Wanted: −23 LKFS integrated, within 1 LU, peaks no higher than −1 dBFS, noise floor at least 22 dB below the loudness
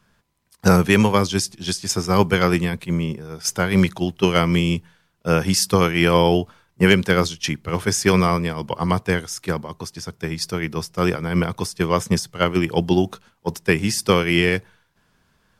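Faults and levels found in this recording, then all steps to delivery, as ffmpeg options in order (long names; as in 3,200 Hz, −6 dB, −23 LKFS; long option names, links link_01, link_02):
integrated loudness −20.0 LKFS; sample peak −1.5 dBFS; target loudness −23.0 LKFS
→ -af "volume=-3dB"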